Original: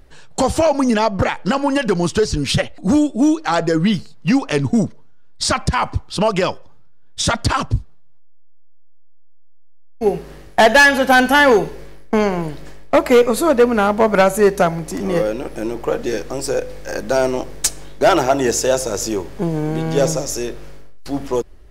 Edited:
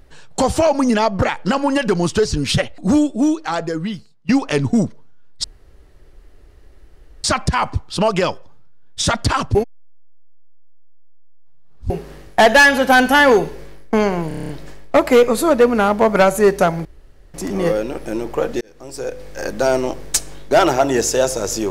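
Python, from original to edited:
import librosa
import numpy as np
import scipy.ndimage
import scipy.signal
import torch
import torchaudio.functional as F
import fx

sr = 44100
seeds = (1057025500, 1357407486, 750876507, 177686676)

y = fx.edit(x, sr, fx.fade_out_to(start_s=2.98, length_s=1.31, floor_db=-21.0),
    fx.insert_room_tone(at_s=5.44, length_s=1.8),
    fx.reverse_span(start_s=7.75, length_s=2.35),
    fx.stutter(start_s=12.48, slice_s=0.03, count=8),
    fx.insert_room_tone(at_s=14.84, length_s=0.49),
    fx.fade_in_span(start_s=16.11, length_s=0.86), tone=tone)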